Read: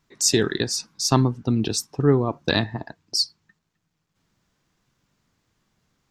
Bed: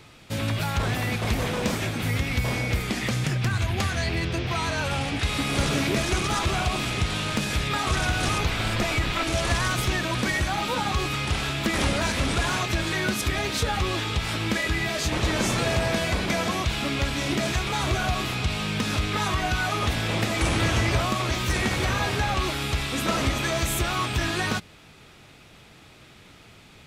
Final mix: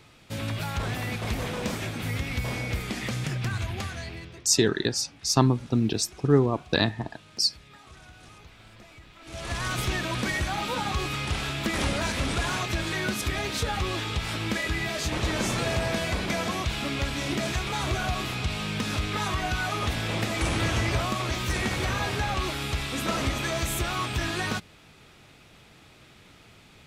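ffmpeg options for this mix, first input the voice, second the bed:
-filter_complex "[0:a]adelay=4250,volume=0.794[s0];[1:a]volume=7.5,afade=t=out:st=3.53:d=0.93:silence=0.0944061,afade=t=in:st=9.21:d=0.59:silence=0.0794328[s1];[s0][s1]amix=inputs=2:normalize=0"

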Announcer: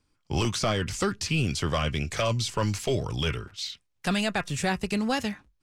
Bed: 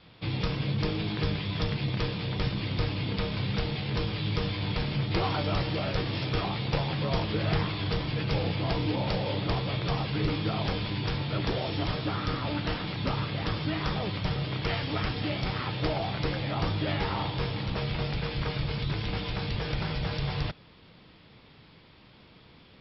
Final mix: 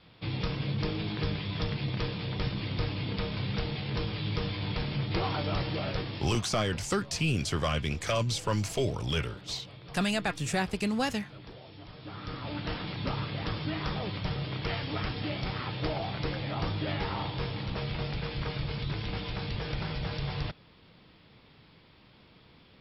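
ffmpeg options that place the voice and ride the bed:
-filter_complex "[0:a]adelay=5900,volume=0.75[s0];[1:a]volume=4.22,afade=t=out:st=5.89:d=0.57:silence=0.16788,afade=t=in:st=11.92:d=0.88:silence=0.177828[s1];[s0][s1]amix=inputs=2:normalize=0"

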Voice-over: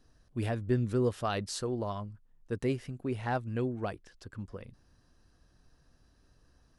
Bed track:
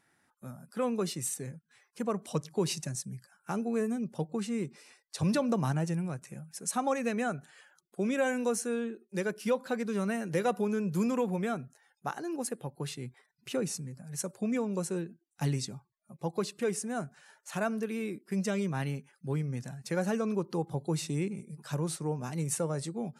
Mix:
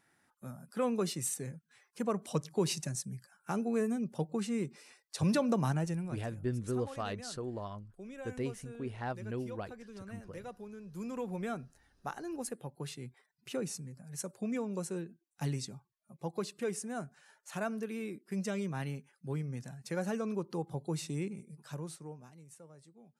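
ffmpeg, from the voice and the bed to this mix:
-filter_complex "[0:a]adelay=5750,volume=0.501[s0];[1:a]volume=3.76,afade=t=out:st=5.66:d=0.94:silence=0.158489,afade=t=in:st=10.87:d=0.65:silence=0.237137,afade=t=out:st=21.29:d=1.11:silence=0.11885[s1];[s0][s1]amix=inputs=2:normalize=0"

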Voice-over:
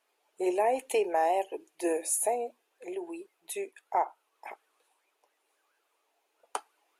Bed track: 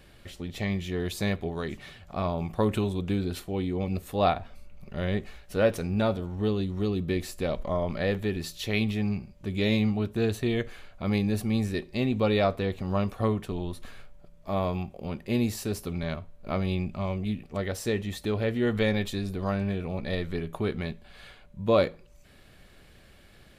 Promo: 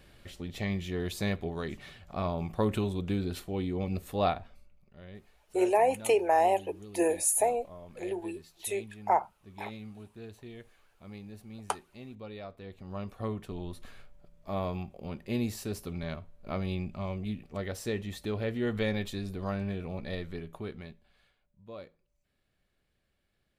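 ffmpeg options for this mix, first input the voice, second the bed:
-filter_complex "[0:a]adelay=5150,volume=1.33[s0];[1:a]volume=3.76,afade=t=out:st=4.17:d=0.66:silence=0.149624,afade=t=in:st=12.54:d=1.26:silence=0.188365,afade=t=out:st=19.92:d=1.4:silence=0.125893[s1];[s0][s1]amix=inputs=2:normalize=0"

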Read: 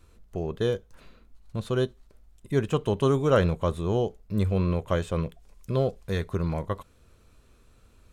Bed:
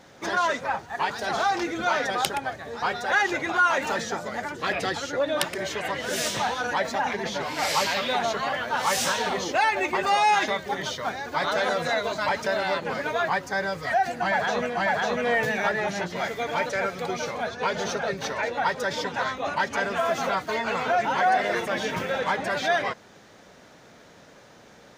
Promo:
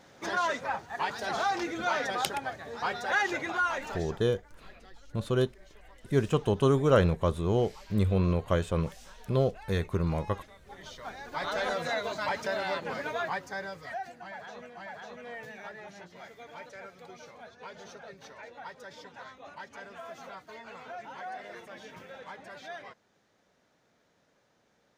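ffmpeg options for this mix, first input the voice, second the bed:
-filter_complex "[0:a]adelay=3600,volume=0.891[s0];[1:a]volume=7.08,afade=t=out:st=3.36:d=0.94:silence=0.0707946,afade=t=in:st=10.58:d=1.08:silence=0.0794328,afade=t=out:st=13:d=1.22:silence=0.223872[s1];[s0][s1]amix=inputs=2:normalize=0"

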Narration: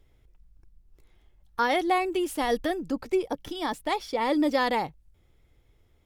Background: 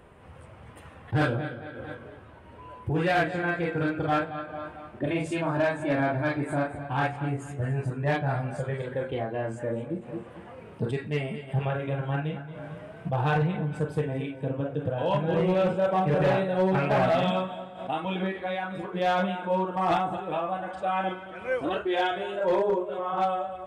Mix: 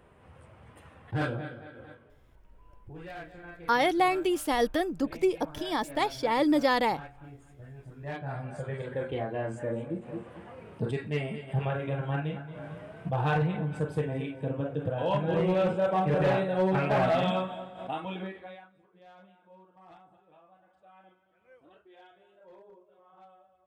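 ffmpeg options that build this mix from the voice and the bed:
-filter_complex "[0:a]adelay=2100,volume=1[s0];[1:a]volume=3.55,afade=t=out:st=1.58:d=0.56:silence=0.223872,afade=t=in:st=7.84:d=1.23:silence=0.149624,afade=t=out:st=17.67:d=1.05:silence=0.0421697[s1];[s0][s1]amix=inputs=2:normalize=0"

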